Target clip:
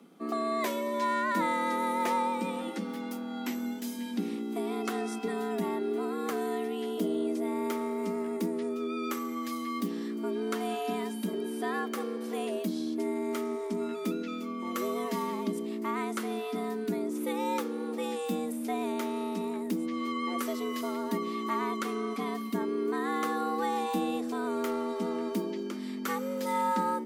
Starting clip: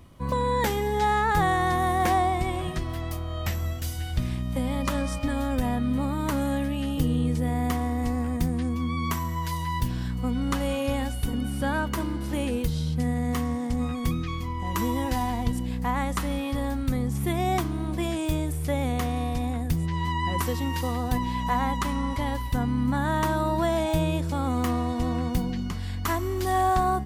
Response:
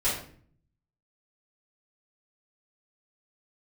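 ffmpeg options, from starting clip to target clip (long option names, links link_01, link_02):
-filter_complex "[0:a]afreqshift=160,asplit=2[link_01][link_02];[link_02]asoftclip=type=tanh:threshold=-19.5dB,volume=-10dB[link_03];[link_01][link_03]amix=inputs=2:normalize=0,volume=-8dB"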